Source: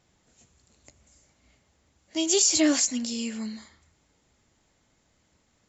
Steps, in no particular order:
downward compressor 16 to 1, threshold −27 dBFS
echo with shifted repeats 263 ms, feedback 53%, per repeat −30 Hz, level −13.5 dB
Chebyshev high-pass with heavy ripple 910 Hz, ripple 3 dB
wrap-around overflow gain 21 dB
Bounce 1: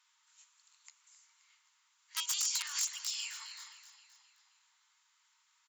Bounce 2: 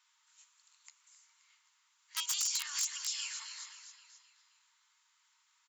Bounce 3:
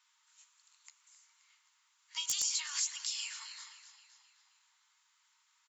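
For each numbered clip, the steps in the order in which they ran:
downward compressor, then wrap-around overflow, then Chebyshev high-pass with heavy ripple, then echo with shifted repeats
echo with shifted repeats, then downward compressor, then wrap-around overflow, then Chebyshev high-pass with heavy ripple
downward compressor, then Chebyshev high-pass with heavy ripple, then echo with shifted repeats, then wrap-around overflow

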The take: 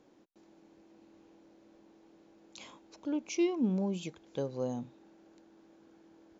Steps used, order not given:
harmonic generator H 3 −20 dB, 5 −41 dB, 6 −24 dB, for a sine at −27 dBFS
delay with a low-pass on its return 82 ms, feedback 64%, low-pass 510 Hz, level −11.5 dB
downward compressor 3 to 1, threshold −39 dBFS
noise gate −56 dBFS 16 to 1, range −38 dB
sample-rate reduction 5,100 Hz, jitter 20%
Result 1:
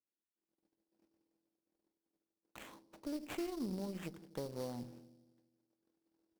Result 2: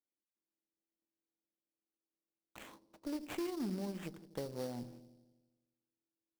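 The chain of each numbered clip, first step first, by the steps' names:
noise gate, then downward compressor, then delay with a low-pass on its return, then sample-rate reduction, then harmonic generator
harmonic generator, then noise gate, then downward compressor, then delay with a low-pass on its return, then sample-rate reduction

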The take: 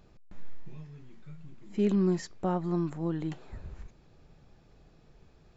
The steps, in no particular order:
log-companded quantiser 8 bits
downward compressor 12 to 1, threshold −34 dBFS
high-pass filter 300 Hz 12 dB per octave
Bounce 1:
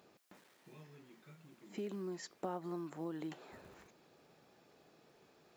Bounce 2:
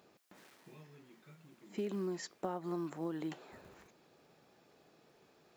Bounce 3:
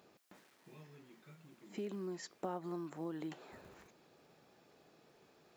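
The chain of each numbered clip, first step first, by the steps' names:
downward compressor, then log-companded quantiser, then high-pass filter
log-companded quantiser, then high-pass filter, then downward compressor
log-companded quantiser, then downward compressor, then high-pass filter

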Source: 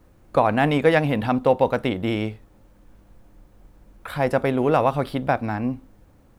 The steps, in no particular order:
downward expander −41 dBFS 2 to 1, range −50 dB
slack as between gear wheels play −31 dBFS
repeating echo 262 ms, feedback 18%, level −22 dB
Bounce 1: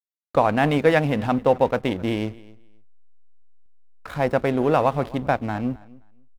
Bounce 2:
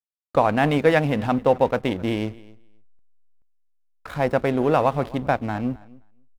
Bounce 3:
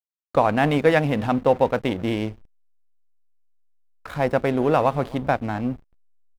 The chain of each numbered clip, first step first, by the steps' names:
downward expander, then slack as between gear wheels, then repeating echo
slack as between gear wheels, then repeating echo, then downward expander
repeating echo, then downward expander, then slack as between gear wheels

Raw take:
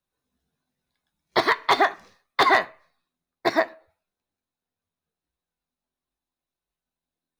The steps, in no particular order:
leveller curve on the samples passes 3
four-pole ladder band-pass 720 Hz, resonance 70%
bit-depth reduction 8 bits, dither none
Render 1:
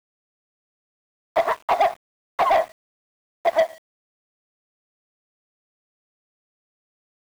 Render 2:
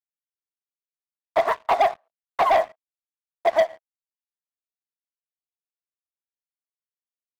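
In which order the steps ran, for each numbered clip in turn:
four-pole ladder band-pass, then leveller curve on the samples, then bit-depth reduction
bit-depth reduction, then four-pole ladder band-pass, then leveller curve on the samples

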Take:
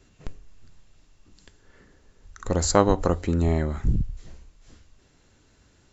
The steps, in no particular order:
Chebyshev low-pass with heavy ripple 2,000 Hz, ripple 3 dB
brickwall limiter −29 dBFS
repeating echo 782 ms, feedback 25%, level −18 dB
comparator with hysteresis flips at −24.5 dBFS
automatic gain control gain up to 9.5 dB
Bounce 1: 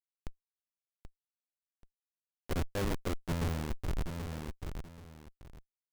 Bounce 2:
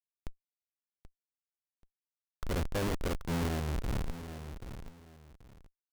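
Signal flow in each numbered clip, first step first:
Chebyshev low-pass with heavy ripple, then comparator with hysteresis, then repeating echo, then automatic gain control, then brickwall limiter
Chebyshev low-pass with heavy ripple, then automatic gain control, then comparator with hysteresis, then repeating echo, then brickwall limiter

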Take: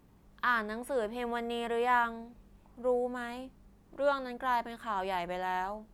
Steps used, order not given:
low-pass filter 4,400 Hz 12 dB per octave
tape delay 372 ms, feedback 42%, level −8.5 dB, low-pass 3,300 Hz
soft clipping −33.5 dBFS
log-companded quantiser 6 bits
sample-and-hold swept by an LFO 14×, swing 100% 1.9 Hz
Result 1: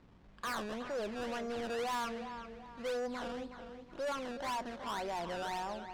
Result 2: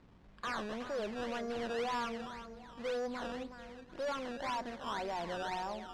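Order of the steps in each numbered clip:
sample-and-hold swept by an LFO, then tape delay, then log-companded quantiser, then low-pass filter, then soft clipping
log-companded quantiser, then soft clipping, then tape delay, then sample-and-hold swept by an LFO, then low-pass filter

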